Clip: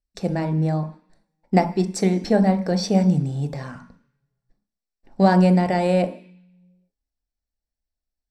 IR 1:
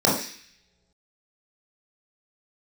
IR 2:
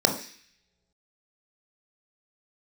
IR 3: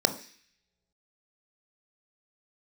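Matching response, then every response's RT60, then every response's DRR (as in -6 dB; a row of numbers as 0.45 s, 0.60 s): 3; no single decay rate, no single decay rate, no single decay rate; -5.5 dB, 3.5 dB, 8.5 dB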